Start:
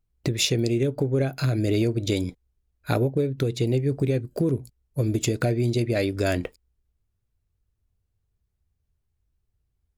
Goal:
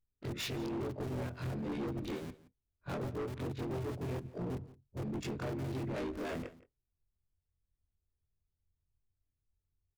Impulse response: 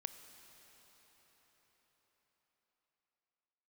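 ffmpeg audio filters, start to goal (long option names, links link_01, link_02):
-filter_complex "[0:a]afftfilt=real='re':imag='-im':win_size=2048:overlap=0.75,adynamicsmooth=sensitivity=4.5:basefreq=1700,acrossover=split=110[link_01][link_02];[link_01]aeval=exprs='(mod(89.1*val(0)+1,2)-1)/89.1':channel_layout=same[link_03];[link_03][link_02]amix=inputs=2:normalize=0,asplit=3[link_04][link_05][link_06];[link_05]asetrate=29433,aresample=44100,atempo=1.49831,volume=-6dB[link_07];[link_06]asetrate=35002,aresample=44100,atempo=1.25992,volume=-8dB[link_08];[link_04][link_07][link_08]amix=inputs=3:normalize=0,asoftclip=type=hard:threshold=-28dB,asplit=2[link_09][link_10];[link_10]aecho=0:1:171:0.112[link_11];[link_09][link_11]amix=inputs=2:normalize=0,volume=-7dB"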